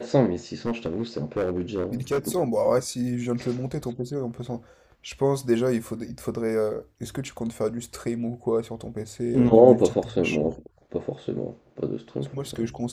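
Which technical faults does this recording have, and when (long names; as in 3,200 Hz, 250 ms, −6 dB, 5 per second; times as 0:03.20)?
0:00.66–0:02.19: clipping −20.5 dBFS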